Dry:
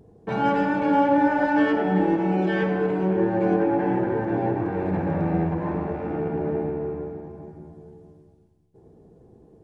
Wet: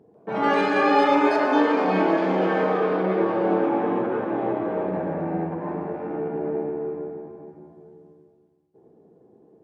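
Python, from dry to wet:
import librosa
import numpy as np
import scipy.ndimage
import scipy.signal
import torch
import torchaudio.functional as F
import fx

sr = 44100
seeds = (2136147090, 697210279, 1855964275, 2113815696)

y = scipy.signal.sosfilt(scipy.signal.butter(2, 230.0, 'highpass', fs=sr, output='sos'), x)
y = fx.high_shelf(y, sr, hz=2700.0, db=-12.0)
y = y + 10.0 ** (-16.0 / 20.0) * np.pad(y, (int(326 * sr / 1000.0), 0))[:len(y)]
y = fx.echo_pitch(y, sr, ms=143, semitones=6, count=3, db_per_echo=-3.0)
y = fx.air_absorb(y, sr, metres=63.0, at=(5.09, 5.68))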